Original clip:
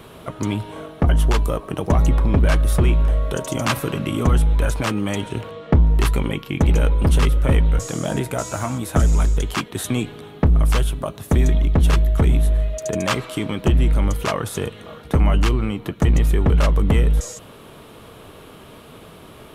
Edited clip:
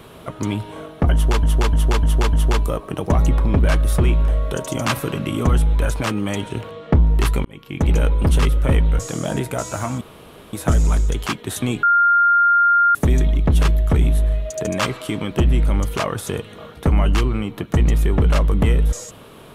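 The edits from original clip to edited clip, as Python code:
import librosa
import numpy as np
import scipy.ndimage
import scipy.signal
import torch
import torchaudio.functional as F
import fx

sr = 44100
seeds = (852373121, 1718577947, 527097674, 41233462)

y = fx.edit(x, sr, fx.repeat(start_s=1.13, length_s=0.3, count=5),
    fx.fade_in_span(start_s=6.25, length_s=0.47),
    fx.insert_room_tone(at_s=8.81, length_s=0.52),
    fx.bleep(start_s=10.11, length_s=1.12, hz=1400.0, db=-11.0), tone=tone)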